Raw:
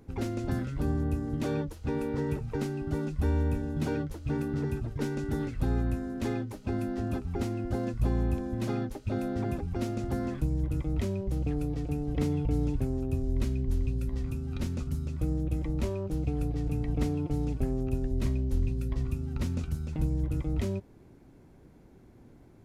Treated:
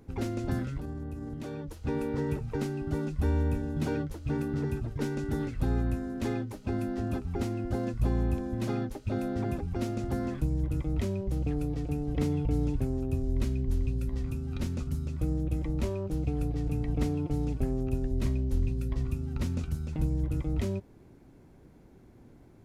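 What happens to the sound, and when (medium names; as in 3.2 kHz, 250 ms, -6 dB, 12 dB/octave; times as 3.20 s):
0.77–1.78 s: compression, threshold -34 dBFS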